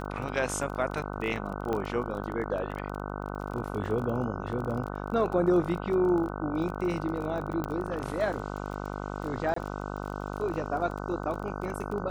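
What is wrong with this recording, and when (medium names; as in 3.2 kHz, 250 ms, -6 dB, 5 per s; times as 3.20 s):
buzz 50 Hz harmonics 30 -36 dBFS
crackle 25 per s -35 dBFS
1.73 s: pop -19 dBFS
7.64 s: pop -19 dBFS
9.54–9.56 s: dropout 24 ms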